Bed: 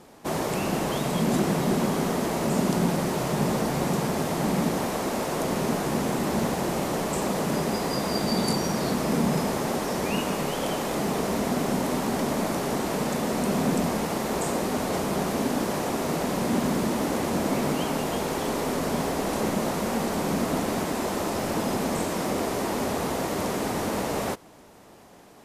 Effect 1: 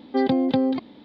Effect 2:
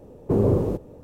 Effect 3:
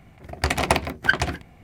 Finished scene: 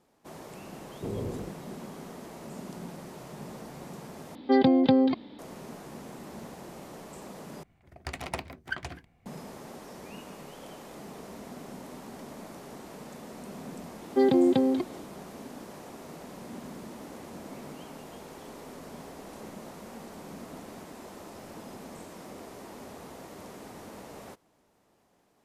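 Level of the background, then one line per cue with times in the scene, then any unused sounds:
bed −17.5 dB
0:00.73: mix in 2 −15 dB
0:04.35: overwrite with 1
0:07.63: overwrite with 3 −15 dB
0:14.02: mix in 1 −4.5 dB + parametric band 360 Hz +14.5 dB 0.25 octaves

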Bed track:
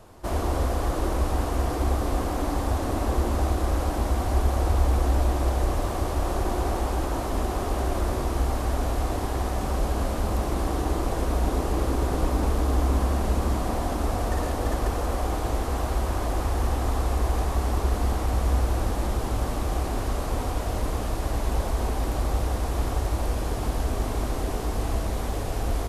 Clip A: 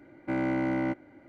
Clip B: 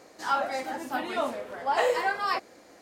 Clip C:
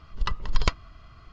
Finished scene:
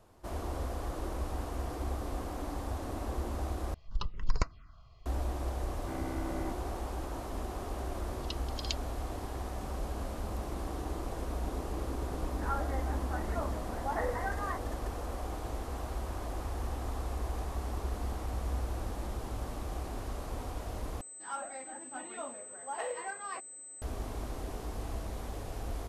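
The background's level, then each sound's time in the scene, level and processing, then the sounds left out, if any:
bed track −11.5 dB
0:03.74: overwrite with C −6 dB + phaser swept by the level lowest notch 210 Hz, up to 3,300 Hz, full sweep at −18 dBFS
0:05.59: mix in A −11.5 dB + high-shelf EQ 3,400 Hz −11 dB
0:08.03: mix in C −3 dB + Butterworth high-pass 2,900 Hz
0:12.19: mix in B −9.5 dB + Butterworth low-pass 2,100 Hz 96 dB per octave
0:21.01: overwrite with B −13 dB + switching amplifier with a slow clock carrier 8,100 Hz

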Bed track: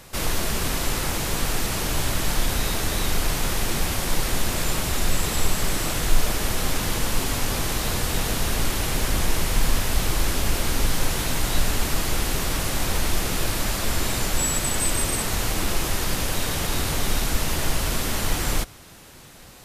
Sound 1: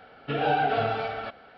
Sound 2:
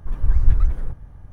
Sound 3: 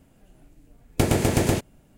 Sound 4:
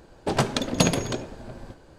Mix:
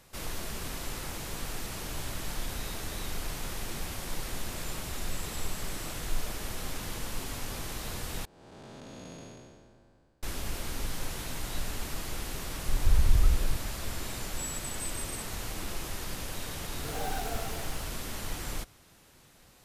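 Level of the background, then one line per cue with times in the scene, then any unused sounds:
bed track −12.5 dB
0:08.25: overwrite with 4 −17.5 dB + spectrum smeared in time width 449 ms
0:12.63: mix in 2 −2.5 dB + downward compressor 2 to 1, threshold −15 dBFS
0:16.54: mix in 1 −13 dB + hold until the input has moved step −30.5 dBFS
not used: 3

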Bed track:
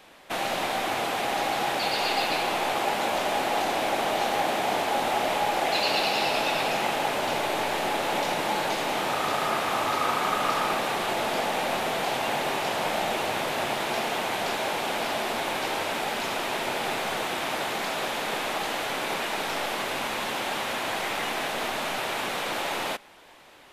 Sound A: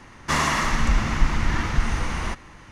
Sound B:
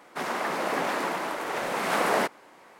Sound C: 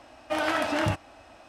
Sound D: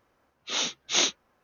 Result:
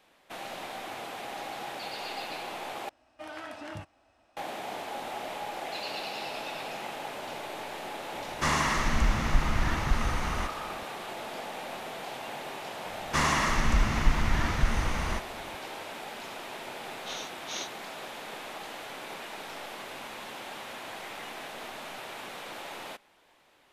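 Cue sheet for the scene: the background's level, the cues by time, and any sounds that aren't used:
bed track −11.5 dB
0:02.89: overwrite with C −15 dB
0:08.13: mix in A −5 dB
0:12.85: mix in A −4 dB
0:16.58: mix in D −14.5 dB + camcorder AGC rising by 17 dB per second
not used: B

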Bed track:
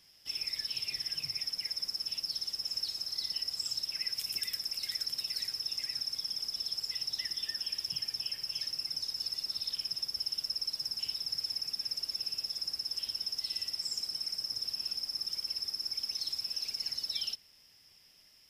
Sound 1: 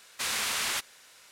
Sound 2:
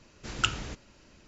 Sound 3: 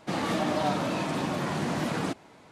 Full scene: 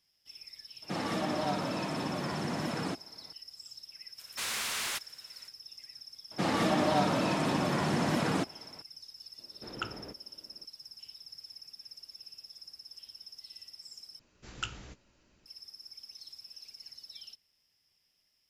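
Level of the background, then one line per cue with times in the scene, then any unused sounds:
bed track −13 dB
0:00.82: mix in 3 −5 dB
0:04.18: mix in 1 −3.5 dB + hard clipping −26 dBFS
0:06.31: mix in 3
0:09.38: mix in 2 −0.5 dB + resonant band-pass 460 Hz, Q 0.81
0:14.19: overwrite with 2 −10.5 dB + double-tracking delay 16 ms −10.5 dB

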